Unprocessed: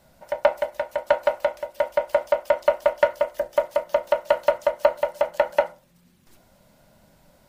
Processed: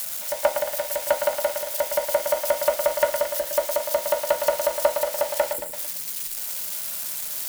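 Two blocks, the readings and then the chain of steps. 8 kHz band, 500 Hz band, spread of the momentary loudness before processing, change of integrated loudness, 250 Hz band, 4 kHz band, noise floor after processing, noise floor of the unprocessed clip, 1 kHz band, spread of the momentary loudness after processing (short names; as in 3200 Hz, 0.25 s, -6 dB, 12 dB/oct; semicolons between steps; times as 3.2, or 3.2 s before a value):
n/a, -2.0 dB, 7 LU, -0.5 dB, -1.5 dB, +7.5 dB, -33 dBFS, -59 dBFS, -1.5 dB, 5 LU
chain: switching spikes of -19.5 dBFS; spectral delete 5.53–5.73, 510–7000 Hz; lo-fi delay 0.112 s, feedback 55%, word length 7-bit, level -7 dB; gain -2.5 dB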